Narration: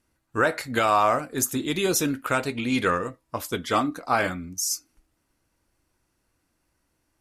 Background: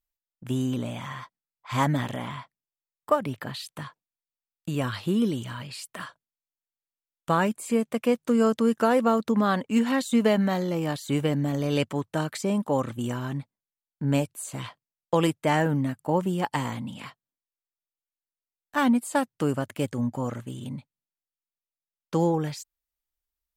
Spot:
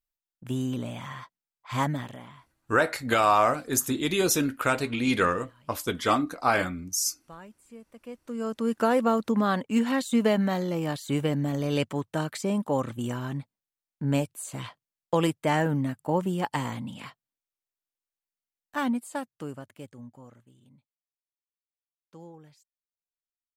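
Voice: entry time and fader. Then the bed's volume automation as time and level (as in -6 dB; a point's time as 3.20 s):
2.35 s, -0.5 dB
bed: 1.81 s -2.5 dB
2.76 s -23 dB
7.91 s -23 dB
8.80 s -1.5 dB
18.46 s -1.5 dB
20.63 s -23.5 dB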